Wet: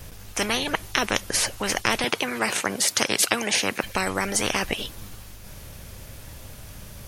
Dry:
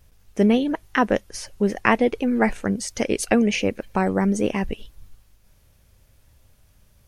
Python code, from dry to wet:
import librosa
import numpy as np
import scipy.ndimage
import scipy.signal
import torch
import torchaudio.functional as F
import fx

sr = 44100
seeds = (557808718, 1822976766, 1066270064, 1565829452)

y = fx.highpass(x, sr, hz=160.0, slope=24, at=(2.04, 3.84))
y = fx.spectral_comp(y, sr, ratio=4.0)